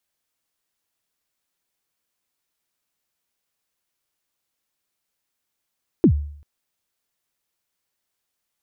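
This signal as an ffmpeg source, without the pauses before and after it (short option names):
-f lavfi -i "aevalsrc='0.422*pow(10,-3*t/0.6)*sin(2*PI*(390*0.083/log(73/390)*(exp(log(73/390)*min(t,0.083)/0.083)-1)+73*max(t-0.083,0)))':d=0.39:s=44100"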